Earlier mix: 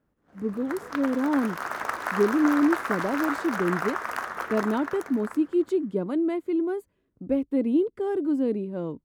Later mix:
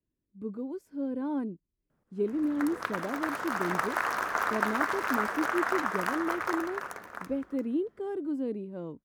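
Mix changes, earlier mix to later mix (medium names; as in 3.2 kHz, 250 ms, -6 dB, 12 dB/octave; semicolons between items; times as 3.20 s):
speech -7.5 dB; background: entry +1.90 s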